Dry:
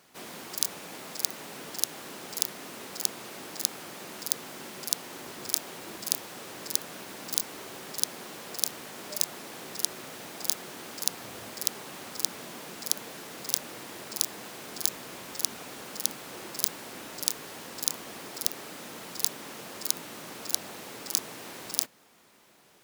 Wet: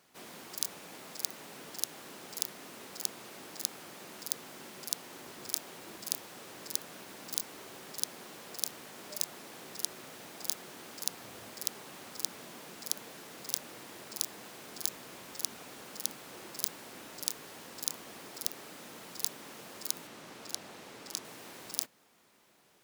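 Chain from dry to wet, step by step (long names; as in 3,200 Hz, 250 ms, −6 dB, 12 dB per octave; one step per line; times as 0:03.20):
0:20.07–0:21.25: high-shelf EQ 9,500 Hz −9.5 dB
level −6 dB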